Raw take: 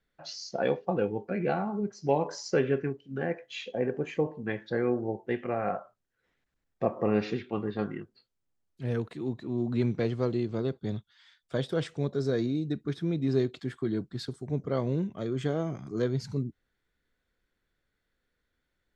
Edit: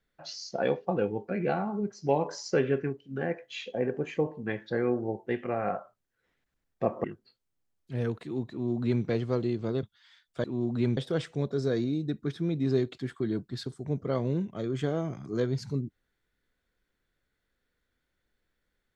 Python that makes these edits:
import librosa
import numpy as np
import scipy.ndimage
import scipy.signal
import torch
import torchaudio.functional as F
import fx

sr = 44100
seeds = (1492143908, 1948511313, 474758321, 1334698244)

y = fx.edit(x, sr, fx.cut(start_s=7.04, length_s=0.9),
    fx.duplicate(start_s=9.41, length_s=0.53, to_s=11.59),
    fx.cut(start_s=10.73, length_s=0.25), tone=tone)